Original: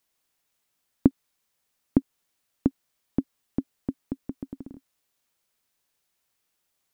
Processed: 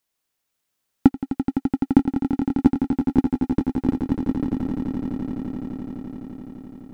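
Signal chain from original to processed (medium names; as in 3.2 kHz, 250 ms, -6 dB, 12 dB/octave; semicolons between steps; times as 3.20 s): waveshaping leveller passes 2; echo with a slow build-up 85 ms, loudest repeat 8, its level -10 dB; trim +1.5 dB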